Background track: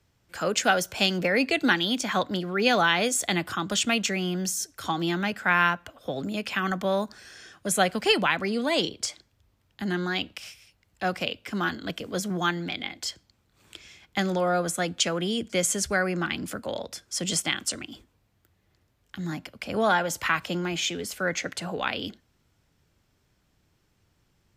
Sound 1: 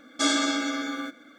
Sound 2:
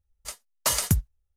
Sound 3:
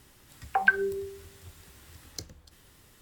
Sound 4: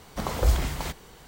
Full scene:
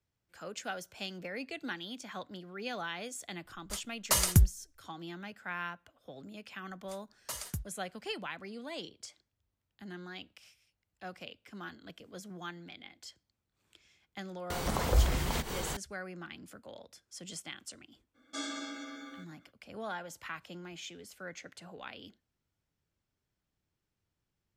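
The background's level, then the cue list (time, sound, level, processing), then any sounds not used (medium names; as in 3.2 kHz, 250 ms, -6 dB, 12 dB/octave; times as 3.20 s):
background track -17 dB
3.45 s: add 2 -3 dB + bass shelf 67 Hz +11 dB
6.63 s: add 2 -16 dB
14.50 s: add 4 -4 dB + upward compressor 4:1, threshold -22 dBFS
18.14 s: add 1 -15.5 dB, fades 0.02 s
not used: 3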